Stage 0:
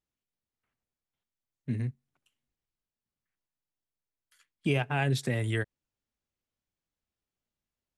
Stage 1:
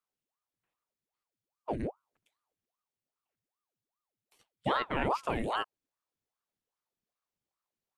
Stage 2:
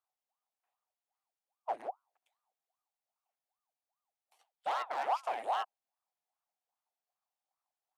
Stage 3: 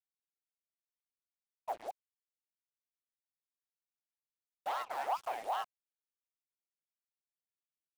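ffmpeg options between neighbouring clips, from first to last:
-filter_complex "[0:a]acrossover=split=3100[s0][s1];[s1]acompressor=threshold=0.00316:ratio=4:attack=1:release=60[s2];[s0][s2]amix=inputs=2:normalize=0,aeval=exprs='val(0)*sin(2*PI*670*n/s+670*0.85/2.5*sin(2*PI*2.5*n/s))':c=same"
-af "asoftclip=type=hard:threshold=0.0316,highpass=f=750:t=q:w=4.9,volume=0.531"
-af "acrusher=bits=7:mix=0:aa=0.5,volume=0.75"

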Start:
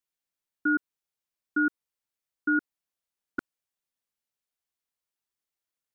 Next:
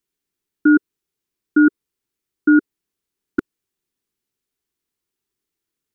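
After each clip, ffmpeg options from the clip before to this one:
-af "lowshelf=f=480:t=q:w=3:g=6,volume=2"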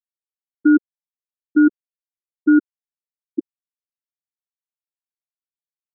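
-af "afftfilt=real='re*gte(hypot(re,im),1)':imag='im*gte(hypot(re,im),1)':win_size=1024:overlap=0.75"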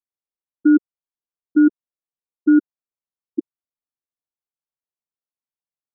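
-af "lowpass=f=1300:w=0.5412,lowpass=f=1300:w=1.3066"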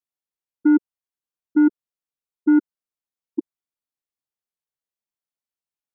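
-af "acontrast=25,volume=0.501"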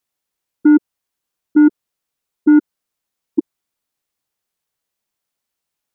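-af "alimiter=level_in=6.68:limit=0.891:release=50:level=0:latency=1,volume=0.668"

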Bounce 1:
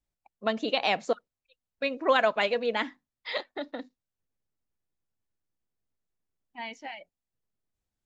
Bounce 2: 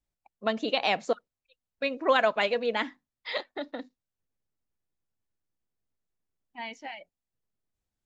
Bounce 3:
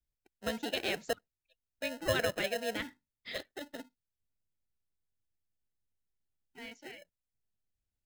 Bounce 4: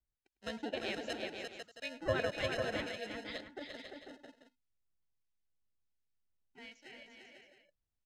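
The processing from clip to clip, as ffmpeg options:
-af anull
-filter_complex "[0:a]acrossover=split=130|1200[s0][s1][s2];[s0]acontrast=84[s3];[s1]acrusher=samples=38:mix=1:aa=0.000001[s4];[s3][s4][s2]amix=inputs=3:normalize=0,volume=0.447"
-filter_complex "[0:a]lowpass=5900,acrossover=split=1800[s0][s1];[s0]aeval=exprs='val(0)*(1-0.7/2+0.7/2*cos(2*PI*1.4*n/s))':c=same[s2];[s1]aeval=exprs='val(0)*(1-0.7/2-0.7/2*cos(2*PI*1.4*n/s))':c=same[s3];[s2][s3]amix=inputs=2:normalize=0,aecho=1:1:103|304|346|496|585|668:0.112|0.133|0.562|0.447|0.106|0.224,volume=0.841"

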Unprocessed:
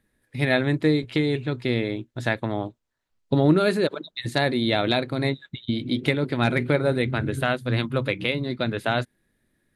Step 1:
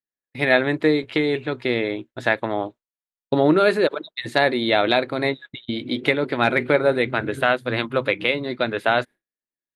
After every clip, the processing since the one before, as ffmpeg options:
-af "agate=range=0.0224:threshold=0.0178:ratio=3:detection=peak,bass=f=250:g=-14,treble=f=4000:g=-9,volume=2"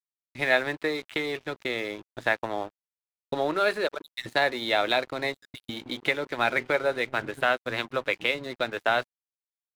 -filter_complex "[0:a]acrossover=split=520|1300[s0][s1][s2];[s0]acompressor=threshold=0.0316:ratio=6[s3];[s3][s1][s2]amix=inputs=3:normalize=0,aeval=exprs='sgn(val(0))*max(abs(val(0))-0.0112,0)':c=same,volume=0.668"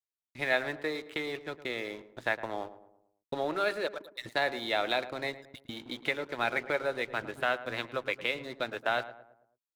-filter_complex "[0:a]asplit=2[s0][s1];[s1]adelay=110,lowpass=f=1400:p=1,volume=0.224,asplit=2[s2][s3];[s3]adelay=110,lowpass=f=1400:p=1,volume=0.47,asplit=2[s4][s5];[s5]adelay=110,lowpass=f=1400:p=1,volume=0.47,asplit=2[s6][s7];[s7]adelay=110,lowpass=f=1400:p=1,volume=0.47,asplit=2[s8][s9];[s9]adelay=110,lowpass=f=1400:p=1,volume=0.47[s10];[s0][s2][s4][s6][s8][s10]amix=inputs=6:normalize=0,volume=0.531"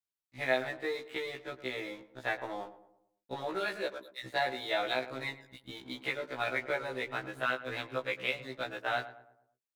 -af "afftfilt=real='re*1.73*eq(mod(b,3),0)':imag='im*1.73*eq(mod(b,3),0)':win_size=2048:overlap=0.75"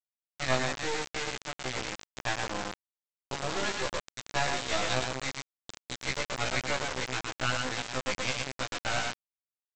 -af "aecho=1:1:114:0.596,aresample=16000,acrusher=bits=3:dc=4:mix=0:aa=0.000001,aresample=44100,volume=1.68"

